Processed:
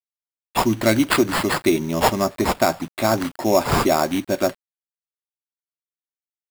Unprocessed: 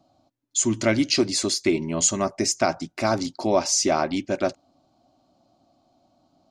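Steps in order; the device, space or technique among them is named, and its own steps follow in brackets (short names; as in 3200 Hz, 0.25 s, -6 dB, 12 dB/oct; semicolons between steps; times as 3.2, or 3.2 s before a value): early 8-bit sampler (sample-rate reducer 6100 Hz, jitter 0%; bit-crush 8-bit); gain +3.5 dB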